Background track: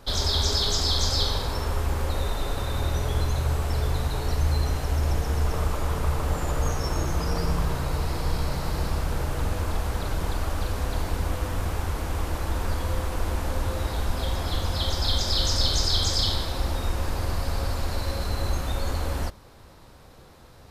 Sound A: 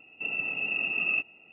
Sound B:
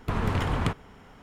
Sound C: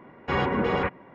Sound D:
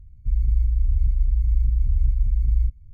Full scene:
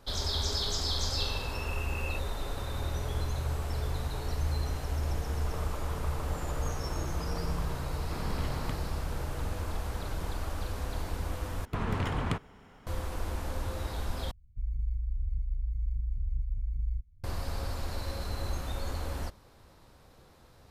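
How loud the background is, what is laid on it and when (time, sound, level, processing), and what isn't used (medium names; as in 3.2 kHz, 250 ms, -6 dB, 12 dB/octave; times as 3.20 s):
background track -7.5 dB
0.97 s: add A -13.5 dB
8.03 s: add B -11.5 dB
11.65 s: replace with B -4.5 dB
14.31 s: replace with D -12.5 dB
not used: C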